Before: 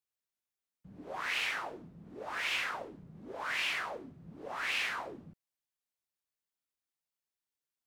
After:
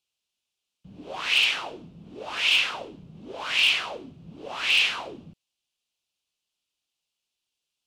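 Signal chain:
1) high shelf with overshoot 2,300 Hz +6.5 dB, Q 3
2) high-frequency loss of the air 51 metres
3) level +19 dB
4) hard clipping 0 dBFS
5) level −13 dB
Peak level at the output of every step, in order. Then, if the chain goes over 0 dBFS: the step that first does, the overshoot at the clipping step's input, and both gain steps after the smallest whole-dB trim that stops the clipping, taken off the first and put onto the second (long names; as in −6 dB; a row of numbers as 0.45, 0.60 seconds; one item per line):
−12.5, −13.5, +5.5, 0.0, −13.0 dBFS
step 3, 5.5 dB
step 3 +13 dB, step 5 −7 dB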